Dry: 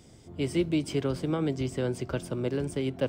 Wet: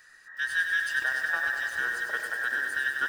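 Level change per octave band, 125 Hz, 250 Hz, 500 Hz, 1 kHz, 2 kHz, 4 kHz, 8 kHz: below −30 dB, below −25 dB, −17.5 dB, +5.0 dB, +20.5 dB, +2.0 dB, +1.0 dB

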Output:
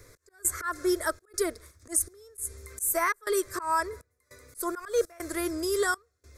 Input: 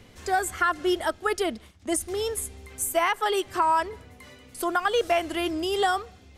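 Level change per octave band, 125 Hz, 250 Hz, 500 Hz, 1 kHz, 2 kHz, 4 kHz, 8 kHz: −4.5, −3.5, −3.5, −7.5, −4.0, −9.0, +2.5 decibels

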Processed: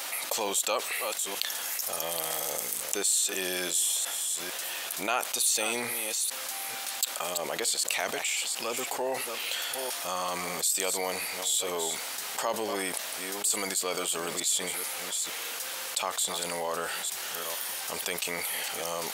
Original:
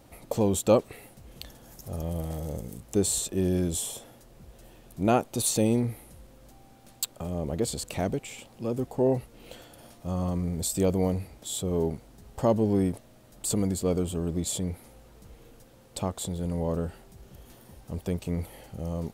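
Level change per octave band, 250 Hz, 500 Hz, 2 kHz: −14.0, −5.5, +13.5 decibels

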